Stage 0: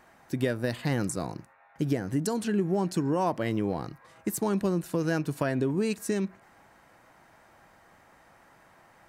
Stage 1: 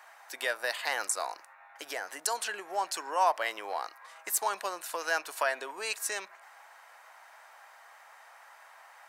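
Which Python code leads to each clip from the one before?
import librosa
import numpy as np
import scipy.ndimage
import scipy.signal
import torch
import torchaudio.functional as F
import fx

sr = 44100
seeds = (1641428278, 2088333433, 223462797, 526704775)

y = scipy.signal.sosfilt(scipy.signal.butter(4, 720.0, 'highpass', fs=sr, output='sos'), x)
y = y * 10.0 ** (5.5 / 20.0)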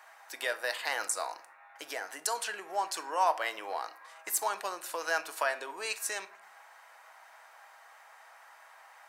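y = fx.room_shoebox(x, sr, seeds[0], volume_m3=530.0, walls='furnished', distance_m=0.61)
y = y * 10.0 ** (-1.5 / 20.0)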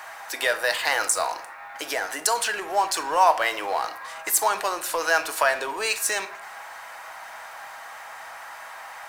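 y = fx.law_mismatch(x, sr, coded='mu')
y = y * 10.0 ** (8.5 / 20.0)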